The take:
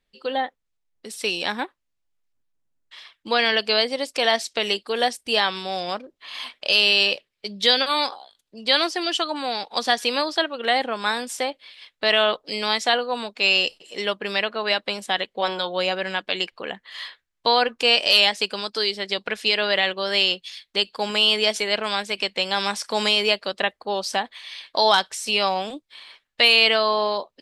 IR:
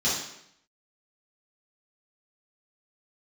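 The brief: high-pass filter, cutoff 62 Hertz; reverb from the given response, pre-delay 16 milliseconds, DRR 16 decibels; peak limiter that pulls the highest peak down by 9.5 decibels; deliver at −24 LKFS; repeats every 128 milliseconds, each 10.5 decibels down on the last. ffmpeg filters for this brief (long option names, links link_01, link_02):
-filter_complex "[0:a]highpass=62,alimiter=limit=-12.5dB:level=0:latency=1,aecho=1:1:128|256|384:0.299|0.0896|0.0269,asplit=2[link_01][link_02];[1:a]atrim=start_sample=2205,adelay=16[link_03];[link_02][link_03]afir=irnorm=-1:irlink=0,volume=-27.5dB[link_04];[link_01][link_04]amix=inputs=2:normalize=0,volume=0.5dB"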